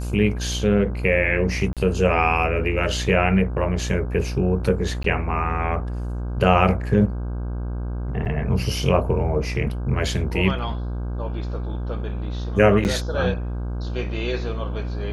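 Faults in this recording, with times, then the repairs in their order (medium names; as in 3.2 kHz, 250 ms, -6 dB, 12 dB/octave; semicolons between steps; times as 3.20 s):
buzz 60 Hz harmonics 27 -27 dBFS
1.73–1.77 s: dropout 37 ms
5.03–5.04 s: dropout 13 ms
8.25–8.26 s: dropout 7.2 ms
12.84–12.85 s: dropout 9.4 ms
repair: de-hum 60 Hz, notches 27; interpolate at 1.73 s, 37 ms; interpolate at 5.03 s, 13 ms; interpolate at 8.25 s, 7.2 ms; interpolate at 12.84 s, 9.4 ms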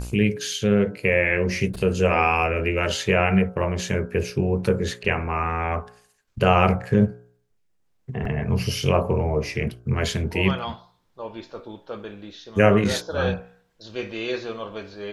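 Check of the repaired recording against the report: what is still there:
nothing left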